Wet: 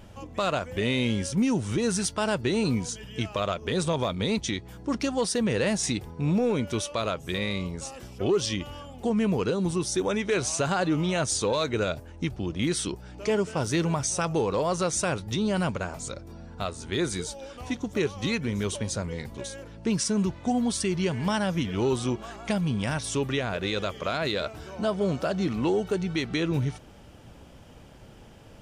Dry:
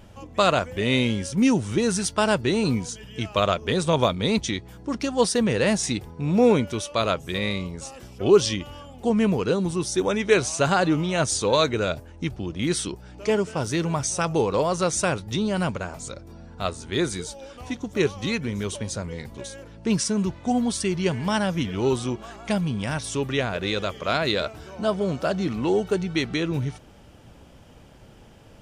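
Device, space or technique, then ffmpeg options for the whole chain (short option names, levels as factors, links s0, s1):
soft clipper into limiter: -af "asoftclip=type=tanh:threshold=0.422,alimiter=limit=0.141:level=0:latency=1:release=176"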